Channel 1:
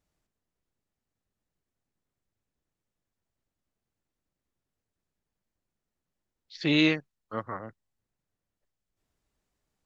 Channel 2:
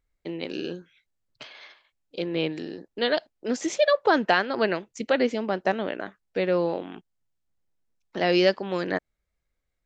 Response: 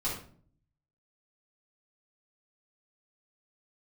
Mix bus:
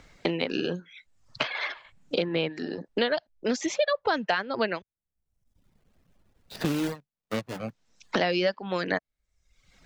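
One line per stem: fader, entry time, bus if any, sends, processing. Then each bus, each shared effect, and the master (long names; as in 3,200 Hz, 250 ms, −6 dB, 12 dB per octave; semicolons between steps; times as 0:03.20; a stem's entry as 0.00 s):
−5.0 dB, 0.00 s, no send, running median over 41 samples
+1.0 dB, 0.00 s, muted 0:04.82–0:07.63, no send, low-pass filter 6,800 Hz 24 dB per octave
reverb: not used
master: reverb reduction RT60 0.65 s; parametric band 350 Hz −5.5 dB 0.76 octaves; multiband upward and downward compressor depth 100%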